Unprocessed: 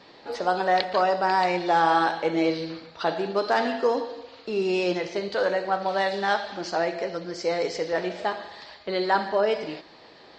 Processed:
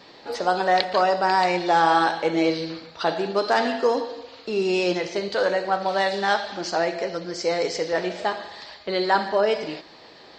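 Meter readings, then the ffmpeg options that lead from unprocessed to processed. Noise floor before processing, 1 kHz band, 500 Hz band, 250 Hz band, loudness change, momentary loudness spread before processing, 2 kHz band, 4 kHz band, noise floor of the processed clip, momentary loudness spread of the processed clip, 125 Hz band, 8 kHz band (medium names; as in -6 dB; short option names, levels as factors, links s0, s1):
-50 dBFS, +2.0 dB, +2.0 dB, +2.0 dB, +2.5 dB, 10 LU, +2.5 dB, +4.0 dB, -48 dBFS, 10 LU, +2.0 dB, +6.0 dB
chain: -af "highshelf=f=6200:g=8,volume=1.26"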